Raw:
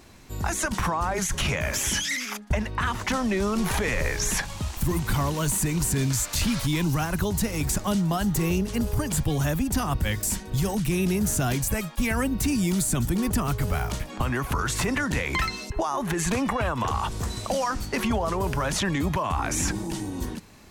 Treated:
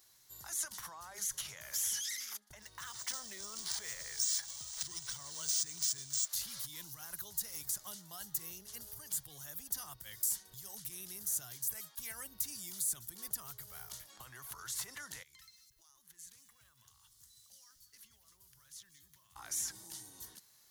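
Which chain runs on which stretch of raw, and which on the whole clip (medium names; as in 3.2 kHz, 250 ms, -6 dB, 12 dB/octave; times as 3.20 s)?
2.62–6.28 s: peaking EQ 8.2 kHz +13.5 dB 1.2 oct + decimation joined by straight lines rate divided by 3×
15.23–19.36 s: amplifier tone stack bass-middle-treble 6-0-2 + bit-crushed delay 188 ms, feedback 35%, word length 9-bit, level -12.5 dB
whole clip: graphic EQ with 31 bands 125 Hz +10 dB, 250 Hz -6 dB, 2.5 kHz -11 dB, 8 kHz -5 dB; compression, threshold -23 dBFS; pre-emphasis filter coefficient 0.97; trim -4.5 dB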